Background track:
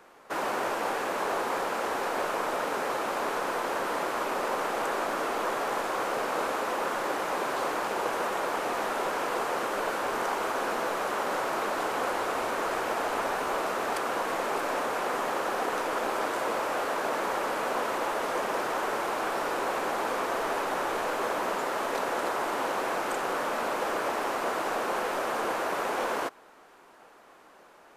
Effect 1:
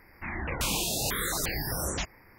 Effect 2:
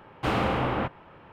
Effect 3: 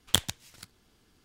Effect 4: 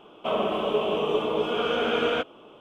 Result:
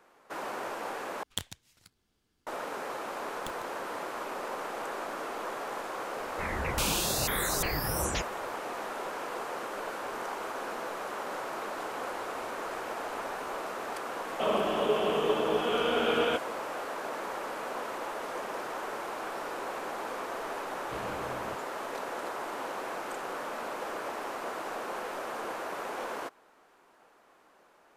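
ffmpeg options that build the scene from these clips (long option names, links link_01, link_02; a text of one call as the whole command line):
ffmpeg -i bed.wav -i cue0.wav -i cue1.wav -i cue2.wav -i cue3.wav -filter_complex "[3:a]asplit=2[link_01][link_02];[0:a]volume=-7dB[link_03];[link_02]aeval=exprs='max(val(0),0)':channel_layout=same[link_04];[link_03]asplit=2[link_05][link_06];[link_05]atrim=end=1.234[link_07];[link_01]atrim=end=1.24,asetpts=PTS-STARTPTS,volume=-11dB[link_08];[link_06]atrim=start=2.466[link_09];[link_04]atrim=end=1.24,asetpts=PTS-STARTPTS,volume=-17dB,afade=type=in:duration=0.004:curve=hsin,afade=type=out:start_time=1.236:duration=0.004:curve=hsin,adelay=3320[link_10];[1:a]atrim=end=2.38,asetpts=PTS-STARTPTS,volume=-0.5dB,afade=type=in:duration=0.004:curve=hsin,afade=type=out:start_time=2.376:duration=0.004:curve=hsin,adelay=6170[link_11];[4:a]atrim=end=2.6,asetpts=PTS-STARTPTS,volume=-3dB,afade=type=in:duration=0.004:curve=hsin,afade=type=out:start_time=2.596:duration=0.004:curve=hsin,adelay=14150[link_12];[2:a]atrim=end=1.32,asetpts=PTS-STARTPTS,volume=-16.5dB,afade=type=in:duration=0.004:curve=hsin,afade=type=out:start_time=1.316:duration=0.004:curve=hsin,adelay=911988S[link_13];[link_07][link_08]acrossfade=duration=0.004:curve1=hsin:curve2=hsin[link_14];[link_14][link_09]acrossfade=duration=0.004:curve1=hsin:curve2=hsin[link_15];[link_15][link_10][link_11][link_12][link_13]amix=inputs=5:normalize=0" out.wav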